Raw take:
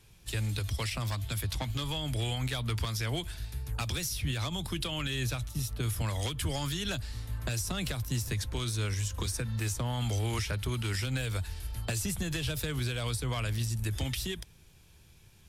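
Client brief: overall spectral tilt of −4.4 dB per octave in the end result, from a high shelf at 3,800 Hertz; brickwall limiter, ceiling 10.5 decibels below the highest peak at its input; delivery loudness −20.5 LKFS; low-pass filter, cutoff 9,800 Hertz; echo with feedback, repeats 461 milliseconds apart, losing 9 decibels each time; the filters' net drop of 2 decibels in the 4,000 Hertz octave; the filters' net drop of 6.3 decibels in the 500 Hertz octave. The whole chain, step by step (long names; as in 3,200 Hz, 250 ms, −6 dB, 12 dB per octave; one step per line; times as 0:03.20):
low-pass filter 9,800 Hz
parametric band 500 Hz −8.5 dB
high-shelf EQ 3,800 Hz +6.5 dB
parametric band 4,000 Hz −6.5 dB
brickwall limiter −31 dBFS
repeating echo 461 ms, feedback 35%, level −9 dB
level +18.5 dB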